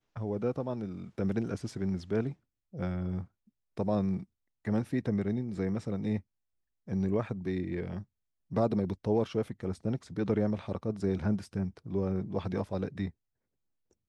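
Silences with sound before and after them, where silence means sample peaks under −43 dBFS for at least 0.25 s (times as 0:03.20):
0:02.33–0:02.74
0:03.25–0:03.77
0:04.23–0:04.65
0:06.20–0:06.88
0:08.03–0:08.51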